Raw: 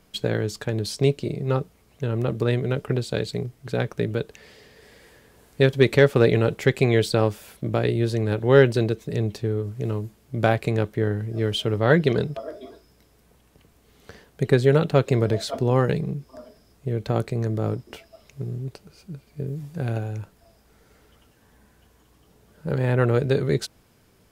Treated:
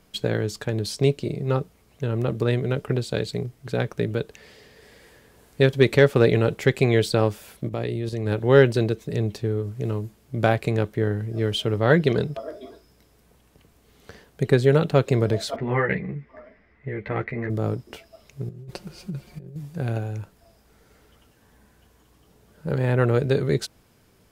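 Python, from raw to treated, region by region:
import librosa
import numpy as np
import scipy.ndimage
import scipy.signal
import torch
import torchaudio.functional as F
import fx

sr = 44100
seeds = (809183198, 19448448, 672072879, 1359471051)

y = fx.chain(x, sr, fx.notch(hz=1500.0, q=7.9),
    fx.level_steps(step_db=9), at=(7.66, 8.26))
y = fx.chain(y, sr, fx.lowpass_res(hz=2000.0, q=9.8),
    fx.ensemble(), at=(15.56, 17.5))
y = fx.chain(y, sr, fx.over_compress(threshold_db=-36.0, ratio=-0.5),
    fx.high_shelf(hz=6900.0, db=-3.5),
    fx.comb(ms=5.6, depth=0.78), at=(18.49, 19.56))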